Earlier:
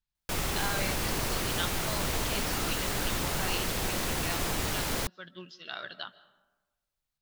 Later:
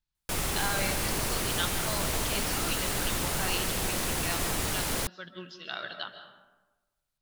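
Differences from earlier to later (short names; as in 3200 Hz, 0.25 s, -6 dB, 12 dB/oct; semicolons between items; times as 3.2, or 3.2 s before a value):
speech: send +11.5 dB; background: add bell 9900 Hz +5 dB 0.8 oct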